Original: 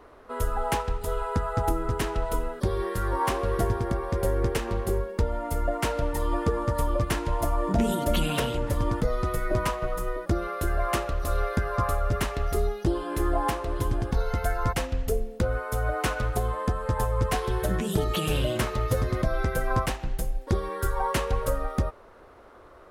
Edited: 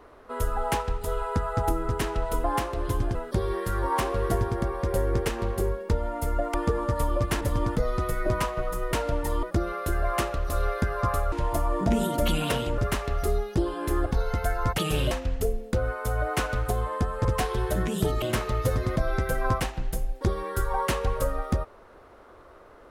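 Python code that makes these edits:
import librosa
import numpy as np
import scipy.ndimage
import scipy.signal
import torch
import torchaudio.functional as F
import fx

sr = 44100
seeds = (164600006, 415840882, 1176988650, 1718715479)

y = fx.edit(x, sr, fx.move(start_s=5.83, length_s=0.5, to_s=10.18),
    fx.move(start_s=7.2, length_s=1.46, to_s=12.07),
    fx.move(start_s=13.35, length_s=0.71, to_s=2.44),
    fx.cut(start_s=16.92, length_s=0.26),
    fx.move(start_s=18.15, length_s=0.33, to_s=14.78), tone=tone)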